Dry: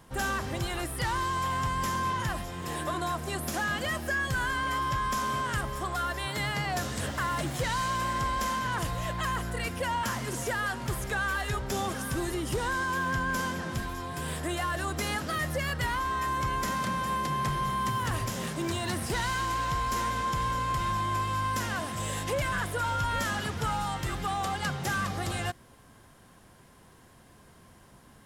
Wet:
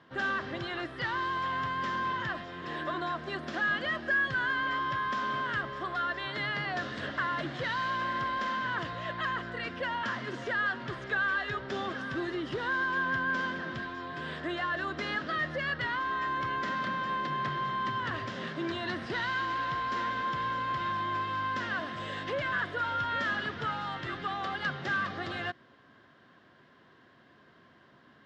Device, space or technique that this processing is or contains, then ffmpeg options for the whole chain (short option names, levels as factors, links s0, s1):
kitchen radio: -af "highpass=190,equalizer=f=190:t=q:w=4:g=-5,equalizer=f=480:t=q:w=4:g=-4,equalizer=f=850:t=q:w=4:g=-8,equalizer=f=1700:t=q:w=4:g=4,equalizer=f=2400:t=q:w=4:g=-5,lowpass=f=3900:w=0.5412,lowpass=f=3900:w=1.3066"